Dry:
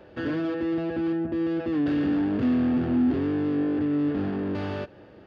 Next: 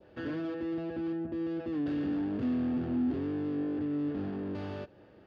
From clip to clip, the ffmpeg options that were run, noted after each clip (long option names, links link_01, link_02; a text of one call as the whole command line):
ffmpeg -i in.wav -af "adynamicequalizer=threshold=0.00447:dfrequency=1800:dqfactor=0.73:tfrequency=1800:tqfactor=0.73:attack=5:release=100:ratio=0.375:range=1.5:mode=cutabove:tftype=bell,volume=-7.5dB" out.wav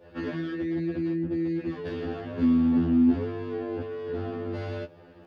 ffmpeg -i in.wav -af "afftfilt=real='re*2*eq(mod(b,4),0)':imag='im*2*eq(mod(b,4),0)':win_size=2048:overlap=0.75,volume=8.5dB" out.wav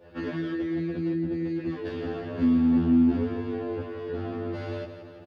ffmpeg -i in.wav -af "aecho=1:1:170|340|510|680|850|1020|1190:0.316|0.18|0.103|0.0586|0.0334|0.019|0.0108" out.wav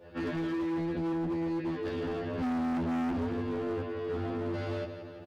ffmpeg -i in.wav -af "asoftclip=type=hard:threshold=-29.5dB" out.wav